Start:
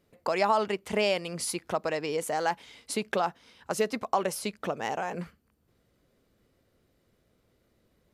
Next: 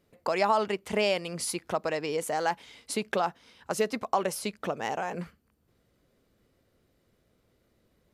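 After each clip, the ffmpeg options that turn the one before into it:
-af anull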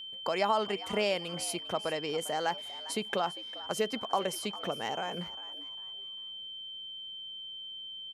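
-filter_complex "[0:a]aeval=exprs='val(0)+0.0141*sin(2*PI*3100*n/s)':c=same,asplit=4[a][b][c][d];[b]adelay=400,afreqshift=110,volume=-17dB[e];[c]adelay=800,afreqshift=220,volume=-27.2dB[f];[d]adelay=1200,afreqshift=330,volume=-37.3dB[g];[a][e][f][g]amix=inputs=4:normalize=0,volume=-3.5dB"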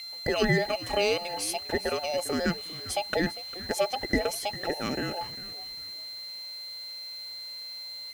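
-af "afftfilt=real='real(if(between(b,1,1008),(2*floor((b-1)/48)+1)*48-b,b),0)':imag='imag(if(between(b,1,1008),(2*floor((b-1)/48)+1)*48-b,b),0)*if(between(b,1,1008),-1,1)':win_size=2048:overlap=0.75,acrusher=bits=8:mix=0:aa=0.000001,volume=4dB"

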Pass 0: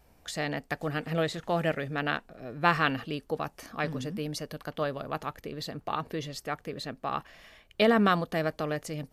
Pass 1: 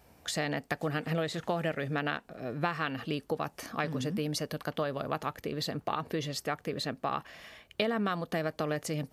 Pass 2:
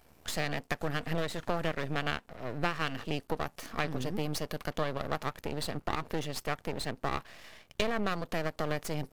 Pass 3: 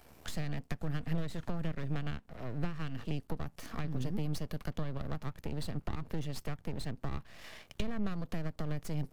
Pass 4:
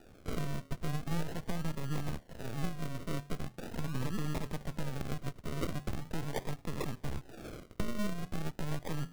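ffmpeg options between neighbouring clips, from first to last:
-af "acompressor=threshold=-31dB:ratio=8,highpass=72,volume=3.5dB"
-af "aeval=exprs='max(val(0),0)':c=same,volume=2.5dB"
-filter_complex "[0:a]acrossover=split=230[a][b];[b]acompressor=threshold=-47dB:ratio=5[c];[a][c]amix=inputs=2:normalize=0,volume=3dB"
-af "flanger=delay=9.1:depth=8.8:regen=-86:speed=0.33:shape=triangular,lowpass=f=4.7k:t=q:w=8.5,acrusher=samples=41:mix=1:aa=0.000001:lfo=1:lforange=24.6:lforate=0.41,volume=4dB"

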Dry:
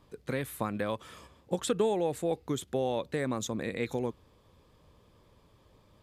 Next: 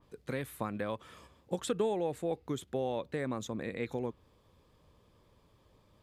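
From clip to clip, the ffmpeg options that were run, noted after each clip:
-af "adynamicequalizer=threshold=0.00224:dfrequency=3700:dqfactor=0.7:tfrequency=3700:tqfactor=0.7:attack=5:release=100:ratio=0.375:range=3.5:mode=cutabove:tftype=highshelf,volume=-3.5dB"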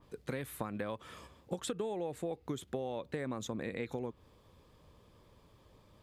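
-af "acompressor=threshold=-37dB:ratio=6,volume=3dB"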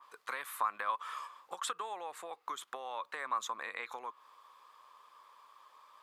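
-af "highpass=f=1.1k:t=q:w=4.9,volume=2dB"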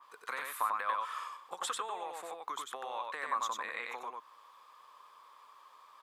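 -af "aecho=1:1:94:0.708"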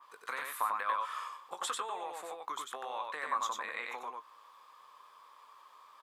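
-filter_complex "[0:a]asplit=2[a][b];[b]adelay=20,volume=-11.5dB[c];[a][c]amix=inputs=2:normalize=0"

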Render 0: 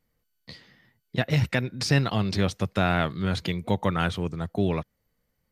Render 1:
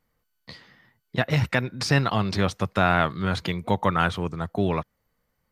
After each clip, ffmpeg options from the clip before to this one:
-af "equalizer=f=1.1k:w=1:g=7"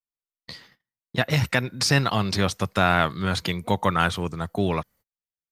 -af "agate=range=-35dB:threshold=-52dB:ratio=16:detection=peak,highshelf=f=4.5k:g=10.5"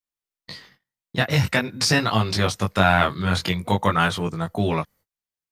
-af "flanger=delay=18:depth=4.4:speed=0.46,volume=5dB"

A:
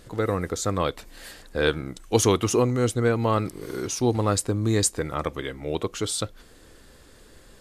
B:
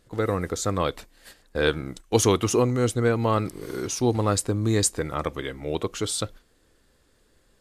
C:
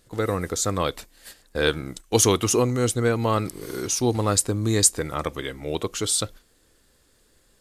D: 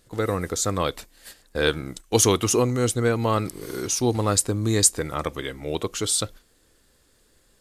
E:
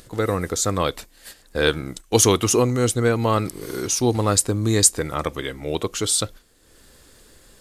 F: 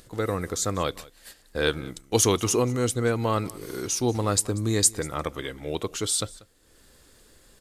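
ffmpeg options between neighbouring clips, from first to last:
-af "agate=range=-12dB:threshold=-40dB:ratio=16:detection=peak"
-af "highshelf=f=4.2k:g=8"
-af anull
-af "acompressor=mode=upward:threshold=-43dB:ratio=2.5,volume=2.5dB"
-af "aecho=1:1:189:0.0841,volume=-5dB"

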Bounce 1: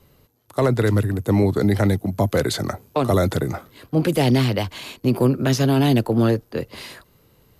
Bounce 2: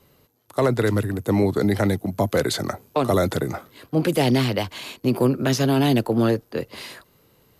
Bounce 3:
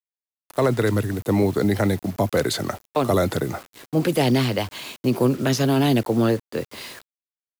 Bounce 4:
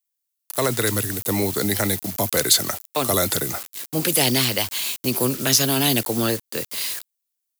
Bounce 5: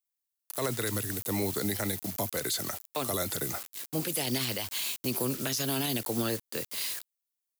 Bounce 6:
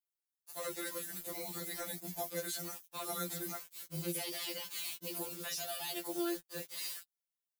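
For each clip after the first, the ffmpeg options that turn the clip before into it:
-af "lowshelf=f=100:g=-10"
-af "acrusher=bits=6:mix=0:aa=0.000001"
-af "crystalizer=i=7.5:c=0,volume=-4.5dB"
-af "alimiter=limit=-13dB:level=0:latency=1:release=66,volume=-7dB"
-af "afftfilt=real='re*2.83*eq(mod(b,8),0)':imag='im*2.83*eq(mod(b,8),0)':win_size=2048:overlap=0.75,volume=-5.5dB"

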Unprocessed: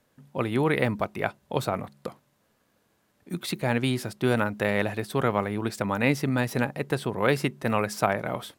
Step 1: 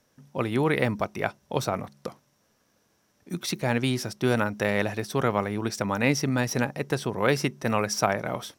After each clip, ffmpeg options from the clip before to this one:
-af "equalizer=f=5.7k:t=o:w=0.25:g=13.5"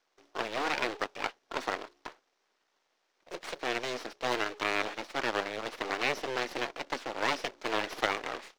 -filter_complex "[0:a]aeval=exprs='abs(val(0))':c=same,acrusher=bits=2:mode=log:mix=0:aa=0.000001,acrossover=split=310 5800:gain=0.0794 1 0.0708[a][b][c];[a][b][c]amix=inputs=3:normalize=0,volume=-2dB"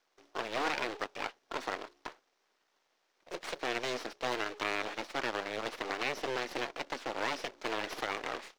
-af "alimiter=limit=-21dB:level=0:latency=1:release=133"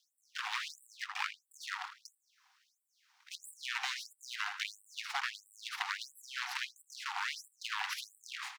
-filter_complex "[0:a]acompressor=threshold=-36dB:ratio=6,asplit=2[a][b];[b]adelay=80,lowpass=f=3.3k:p=1,volume=-7.5dB,asplit=2[c][d];[d]adelay=80,lowpass=f=3.3k:p=1,volume=0.44,asplit=2[e][f];[f]adelay=80,lowpass=f=3.3k:p=1,volume=0.44,asplit=2[g][h];[h]adelay=80,lowpass=f=3.3k:p=1,volume=0.44,asplit=2[i][j];[j]adelay=80,lowpass=f=3.3k:p=1,volume=0.44[k];[c][e][g][i][k]amix=inputs=5:normalize=0[l];[a][l]amix=inputs=2:normalize=0,afftfilt=real='re*gte(b*sr/1024,710*pow(7700/710,0.5+0.5*sin(2*PI*1.5*pts/sr)))':imag='im*gte(b*sr/1024,710*pow(7700/710,0.5+0.5*sin(2*PI*1.5*pts/sr)))':win_size=1024:overlap=0.75,volume=6.5dB"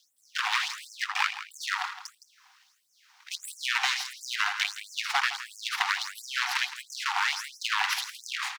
-filter_complex "[0:a]asplit=2[a][b];[b]asoftclip=type=hard:threshold=-26dB,volume=-8.5dB[c];[a][c]amix=inputs=2:normalize=0,aecho=1:1:165:0.224,volume=7.5dB"

